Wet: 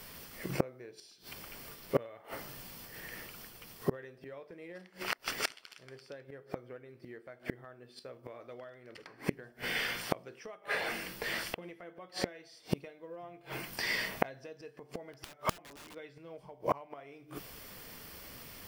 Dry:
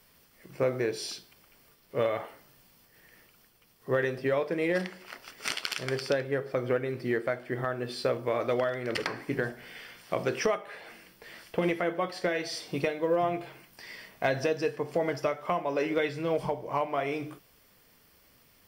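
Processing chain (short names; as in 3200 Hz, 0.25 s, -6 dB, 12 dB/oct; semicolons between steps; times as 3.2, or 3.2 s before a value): 15.13–15.95 wrapped overs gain 26.5 dB; flipped gate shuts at -28 dBFS, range -32 dB; gain +12 dB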